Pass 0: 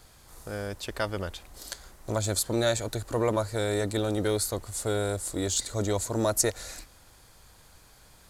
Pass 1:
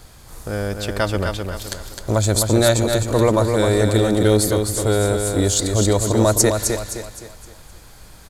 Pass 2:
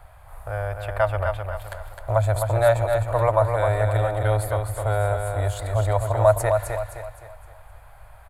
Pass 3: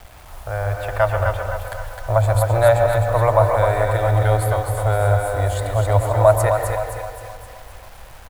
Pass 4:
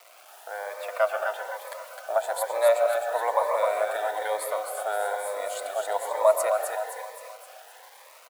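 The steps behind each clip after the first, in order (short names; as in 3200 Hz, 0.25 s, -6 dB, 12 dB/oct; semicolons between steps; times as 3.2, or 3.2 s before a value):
low shelf 360 Hz +4.5 dB; on a send: feedback echo 0.259 s, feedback 39%, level -5.5 dB; on the sum: gain +8 dB
EQ curve 110 Hz 0 dB, 210 Hz -27 dB, 430 Hz -14 dB, 630 Hz +6 dB, 2400 Hz -4 dB, 5900 Hz -26 dB, 10000 Hz -10 dB; gain -2 dB
bit-crush 8-bit; feedback echo 0.263 s, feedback 55%, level -12 dB; on a send at -7 dB: reverb RT60 0.70 s, pre-delay 0.114 s; on the sum: gain +3.5 dB
HPF 520 Hz 24 dB/oct; cascading phaser rising 1.1 Hz; gain -3 dB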